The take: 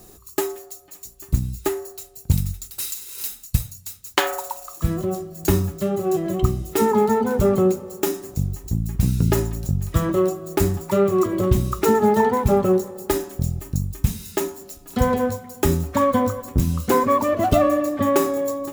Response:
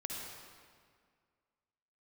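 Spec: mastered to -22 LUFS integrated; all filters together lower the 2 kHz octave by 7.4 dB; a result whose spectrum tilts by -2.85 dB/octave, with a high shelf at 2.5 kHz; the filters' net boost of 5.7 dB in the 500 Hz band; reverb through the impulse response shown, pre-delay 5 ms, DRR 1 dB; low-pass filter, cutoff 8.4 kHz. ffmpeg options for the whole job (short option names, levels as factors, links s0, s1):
-filter_complex "[0:a]lowpass=8400,equalizer=f=500:t=o:g=8,equalizer=f=2000:t=o:g=-7,highshelf=f=2500:g=-7,asplit=2[s0][s1];[1:a]atrim=start_sample=2205,adelay=5[s2];[s1][s2]afir=irnorm=-1:irlink=0,volume=0.841[s3];[s0][s3]amix=inputs=2:normalize=0,volume=0.473"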